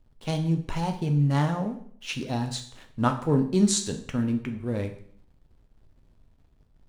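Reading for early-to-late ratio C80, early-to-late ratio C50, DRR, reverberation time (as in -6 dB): 13.5 dB, 10.5 dB, 5.0 dB, 0.60 s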